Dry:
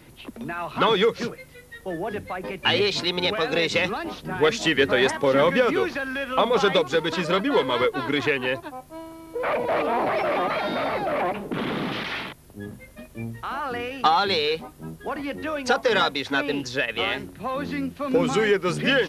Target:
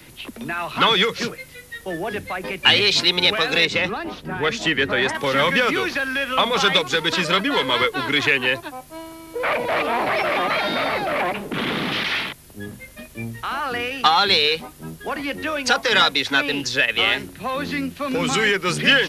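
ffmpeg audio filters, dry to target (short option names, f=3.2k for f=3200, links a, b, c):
-filter_complex "[0:a]asettb=1/sr,asplit=3[a][b][c];[a]atrim=end=3.654[d];[b]atrim=start=3.65:end=5.15,asetpts=PTS-STARTPTS,afade=t=in:d=0.004:c=qsin,afade=t=out:st=1.496:d=0.004:c=qsin,highshelf=f=2.3k:g=-11[e];[c]atrim=start=5.146[f];[d][e]acrossfade=d=0.004:c1=hsin:c2=qsin[g];[g][f]acrossfade=d=0.004:c1=qsin:c2=hsin,acrossover=split=230|720|1600[h][i][j][k];[i]alimiter=limit=-24dB:level=0:latency=1[l];[k]acontrast=86[m];[h][l][j][m]amix=inputs=4:normalize=0,volume=2dB"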